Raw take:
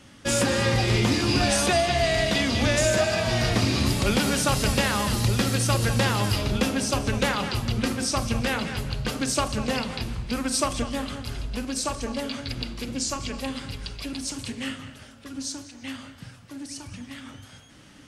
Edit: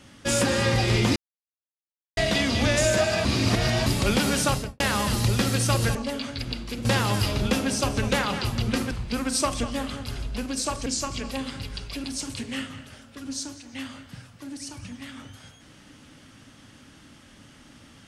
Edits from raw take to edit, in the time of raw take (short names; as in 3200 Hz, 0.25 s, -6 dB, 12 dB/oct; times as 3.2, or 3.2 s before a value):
1.16–2.17 mute
3.25–3.86 reverse
4.46–4.8 studio fade out
8.01–10.1 cut
12.05–12.95 move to 5.95